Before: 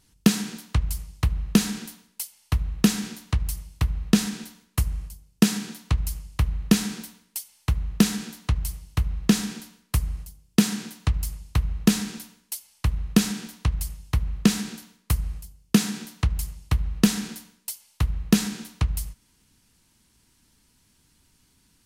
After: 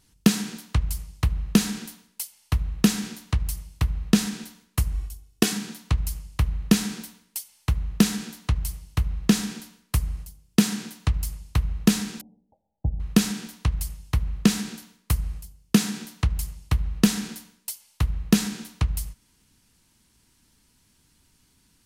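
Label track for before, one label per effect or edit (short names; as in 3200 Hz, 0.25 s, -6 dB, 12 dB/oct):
4.940000	5.530000	comb 2.7 ms
12.210000	13.000000	rippled Chebyshev low-pass 830 Hz, ripple 3 dB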